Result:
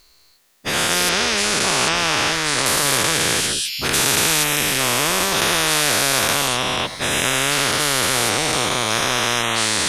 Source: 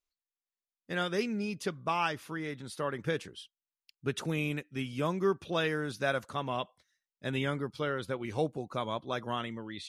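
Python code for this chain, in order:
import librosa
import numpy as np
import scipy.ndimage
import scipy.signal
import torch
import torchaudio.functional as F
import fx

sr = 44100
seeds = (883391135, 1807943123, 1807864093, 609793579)

y = fx.spec_dilate(x, sr, span_ms=480)
y = fx.lowpass(y, sr, hz=5300.0, slope=12, at=(1.09, 2.66))
y = fx.spectral_comp(y, sr, ratio=4.0)
y = F.gain(torch.from_numpy(y), 7.0).numpy()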